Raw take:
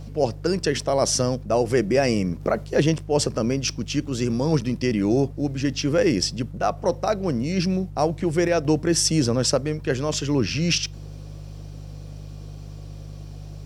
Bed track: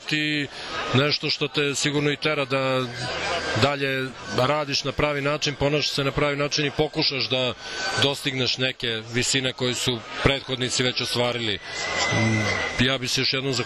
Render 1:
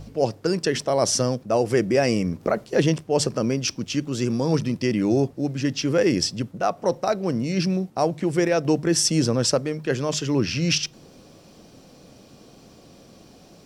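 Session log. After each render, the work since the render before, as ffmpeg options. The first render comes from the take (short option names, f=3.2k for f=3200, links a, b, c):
-af "bandreject=f=50:t=h:w=4,bandreject=f=100:t=h:w=4,bandreject=f=150:t=h:w=4"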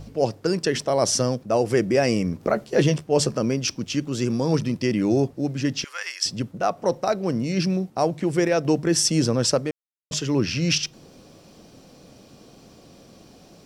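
-filter_complex "[0:a]asettb=1/sr,asplit=3[a][b][c];[a]atrim=end=2.494[d];[b]atrim=start=2.49:end=3.37,asetpts=PTS-STARTPTS,afade=t=in:d=0.004:c=qsin,afade=t=out:st=0.876:d=0.004:c=qsin,asplit=2[e][f];[f]adelay=14,volume=-8dB[g];[e][g]amix=inputs=2:normalize=0,atrim=end_sample=38808[h];[c]atrim=start=3.366[i];[d][h]acrossfade=d=0.004:c1=hsin:c2=qsin[j];[j][i]acrossfade=d=0.004:c1=qsin:c2=hsin,asettb=1/sr,asplit=3[k][l][m];[k]atrim=end=5.844[n];[l]atrim=start=5.84:end=6.26,asetpts=PTS-STARTPTS,afade=t=in:d=0.004:c=qsin,afade=t=out:st=0.416:d=0.004:c=qsin,highpass=f=1.1k:w=0.5412,highpass=f=1.1k:w=1.3066[o];[m]atrim=start=6.256[p];[n][o]acrossfade=d=0.004:c1=hsin:c2=qsin[q];[q][p]acrossfade=d=0.004:c1=qsin:c2=hsin,asplit=3[r][s][t];[r]atrim=end=9.71,asetpts=PTS-STARTPTS,afade=t=out:st=9.706:d=0.004:c=hsin[u];[s]atrim=start=9.71:end=10.11,asetpts=PTS-STARTPTS,volume=0[v];[t]atrim=start=10.11,asetpts=PTS-STARTPTS,afade=t=in:d=0.004:c=hsin[w];[u][v][w]concat=n=3:v=0:a=1"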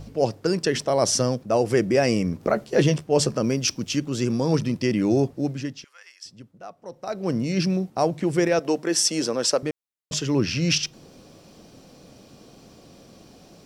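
-filter_complex "[0:a]asettb=1/sr,asplit=3[a][b][c];[a]atrim=end=3.444[d];[b]atrim=start=3.44:end=3.99,asetpts=PTS-STARTPTS,afade=t=in:d=0.004:c=qsin,afade=t=out:st=0.546:d=0.004:c=qsin,highshelf=f=6.6k:g=6[e];[c]atrim=start=3.986[f];[d][e]acrossfade=d=0.004:c1=hsin:c2=qsin[g];[g][f]acrossfade=d=0.004:c1=qsin:c2=hsin,asettb=1/sr,asplit=3[h][i][j];[h]atrim=end=8.594[k];[i]atrim=start=8.59:end=9.63,asetpts=PTS-STARTPTS,afade=t=in:d=0.004:c=qsin,afade=t=out:st=1.036:d=0.004:c=qsin,highpass=340[l];[j]atrim=start=9.626[m];[k][l]acrossfade=d=0.004:c1=hsin:c2=qsin[n];[n][m]acrossfade=d=0.004:c1=qsin:c2=hsin,asplit=3[o][p][q];[o]atrim=end=5.94,asetpts=PTS-STARTPTS,afade=t=out:st=5.48:d=0.46:c=qua:silence=0.141254[r];[p]atrim=start=5.94:end=6.84,asetpts=PTS-STARTPTS,volume=-17dB[s];[q]atrim=start=6.84,asetpts=PTS-STARTPTS,afade=t=in:d=0.46:c=qua:silence=0.141254[t];[r][s][t]concat=n=3:v=0:a=1"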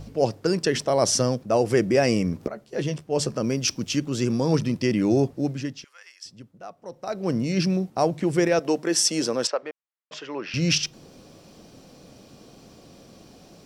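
-filter_complex "[0:a]asettb=1/sr,asplit=3[a][b][c];[a]atrim=end=9.474[d];[b]atrim=start=9.47:end=10.54,asetpts=PTS-STARTPTS,afade=t=in:d=0.004:c=qsin,afade=t=out:st=1.066:d=0.004:c=qsin,highpass=610,lowpass=2.4k[e];[c]atrim=start=10.536[f];[d][e]acrossfade=d=0.004:c1=hsin:c2=qsin[g];[g][f]acrossfade=d=0.004:c1=qsin:c2=hsin,asplit=2[h][i];[h]atrim=end=2.48,asetpts=PTS-STARTPTS,afade=t=out:st=2.476:d=0.004:c=hsin:silence=0.158489[j];[i]atrim=start=2.48,asetpts=PTS-STARTPTS,afade=t=in:d=1.3:silence=0.158489[k];[j][k]concat=n=2:v=0:a=1"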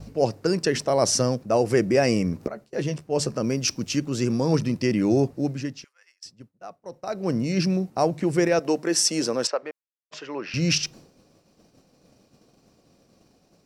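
-af "agate=range=-33dB:threshold=-40dB:ratio=3:detection=peak,equalizer=f=3.3k:t=o:w=0.21:g=-6.5"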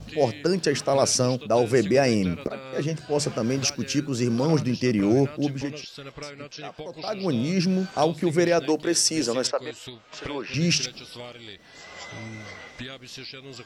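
-filter_complex "[1:a]volume=-16.5dB[a];[0:a][a]amix=inputs=2:normalize=0"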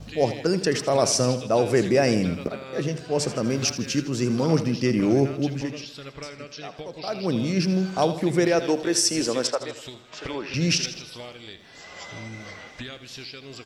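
-af "aecho=1:1:80|160|240|320|400:0.224|0.119|0.0629|0.0333|0.0177"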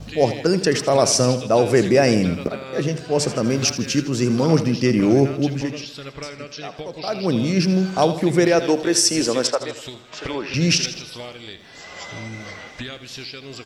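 -af "volume=4.5dB,alimiter=limit=-3dB:level=0:latency=1"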